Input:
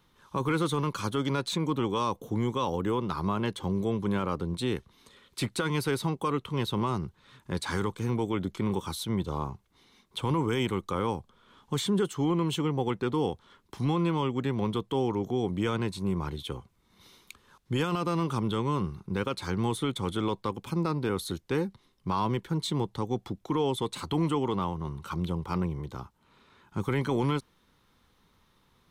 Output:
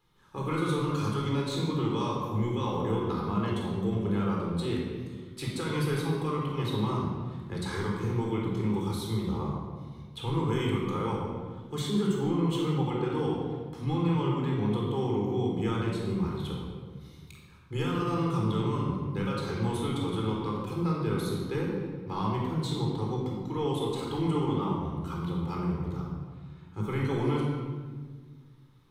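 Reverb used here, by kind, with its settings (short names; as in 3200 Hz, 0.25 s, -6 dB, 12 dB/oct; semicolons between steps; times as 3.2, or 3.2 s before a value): shoebox room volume 1800 m³, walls mixed, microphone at 4 m; gain -9 dB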